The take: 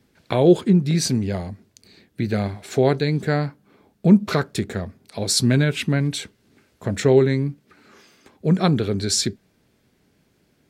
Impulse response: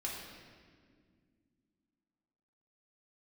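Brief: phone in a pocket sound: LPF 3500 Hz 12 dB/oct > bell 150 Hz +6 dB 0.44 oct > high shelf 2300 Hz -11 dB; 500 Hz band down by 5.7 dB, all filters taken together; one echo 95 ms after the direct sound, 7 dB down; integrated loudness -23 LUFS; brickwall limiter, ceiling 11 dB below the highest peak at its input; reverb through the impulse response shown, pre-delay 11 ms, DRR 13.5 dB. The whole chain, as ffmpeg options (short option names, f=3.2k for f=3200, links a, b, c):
-filter_complex "[0:a]equalizer=f=500:t=o:g=-7.5,alimiter=limit=-16dB:level=0:latency=1,aecho=1:1:95:0.447,asplit=2[a][b];[1:a]atrim=start_sample=2205,adelay=11[c];[b][c]afir=irnorm=-1:irlink=0,volume=-15dB[d];[a][d]amix=inputs=2:normalize=0,lowpass=3.5k,equalizer=f=150:t=o:w=0.44:g=6,highshelf=f=2.3k:g=-11,volume=1dB"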